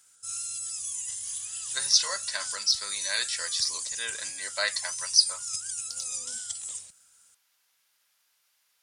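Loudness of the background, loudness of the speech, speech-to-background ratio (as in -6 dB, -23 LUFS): -32.5 LUFS, -27.0 LUFS, 5.5 dB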